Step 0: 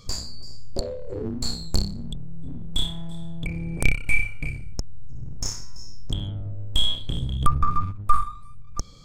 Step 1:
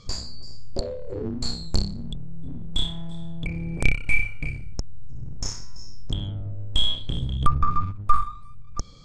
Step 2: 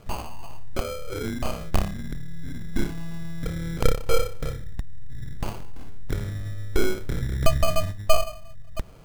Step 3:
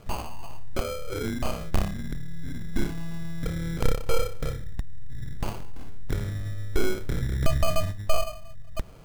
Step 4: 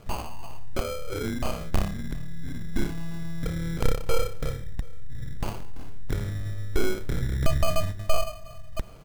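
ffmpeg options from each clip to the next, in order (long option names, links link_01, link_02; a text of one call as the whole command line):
ffmpeg -i in.wav -af "lowpass=6700" out.wav
ffmpeg -i in.wav -af "acrusher=samples=24:mix=1:aa=0.000001" out.wav
ffmpeg -i in.wav -af "asoftclip=type=tanh:threshold=-10dB" out.wav
ffmpeg -i in.wav -af "aecho=1:1:367|734|1101:0.0794|0.035|0.0154" out.wav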